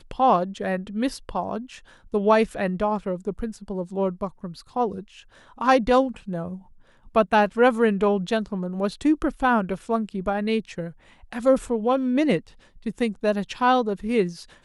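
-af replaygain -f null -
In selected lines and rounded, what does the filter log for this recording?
track_gain = +2.3 dB
track_peak = 0.343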